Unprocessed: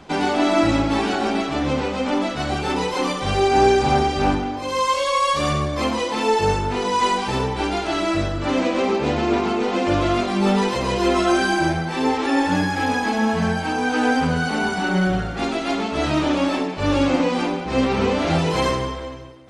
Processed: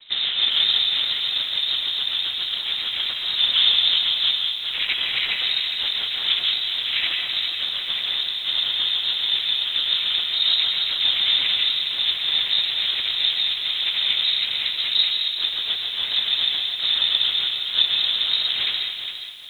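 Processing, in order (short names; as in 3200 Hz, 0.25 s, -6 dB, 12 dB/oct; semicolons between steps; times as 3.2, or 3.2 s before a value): reverb removal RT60 0.92 s; noise vocoder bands 6; in parallel at -4 dB: sample-rate reducer 1700 Hz, jitter 0%; on the sum: air absorption 330 m; on a send at -4 dB: reverb RT60 0.60 s, pre-delay 0.11 s; on the sum: inverted band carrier 3900 Hz; lo-fi delay 0.409 s, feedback 35%, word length 7-bit, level -9 dB; gain -3.5 dB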